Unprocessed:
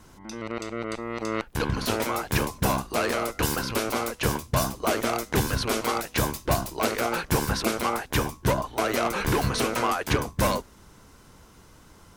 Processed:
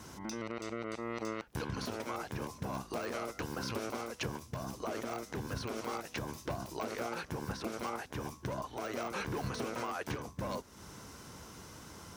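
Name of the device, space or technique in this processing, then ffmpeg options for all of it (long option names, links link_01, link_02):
broadcast voice chain: -af "highpass=74,deesser=0.8,acompressor=threshold=-40dB:ratio=3,equalizer=frequency=5700:width_type=o:width=0.38:gain=5,alimiter=level_in=5dB:limit=-24dB:level=0:latency=1:release=157,volume=-5dB,volume=2.5dB"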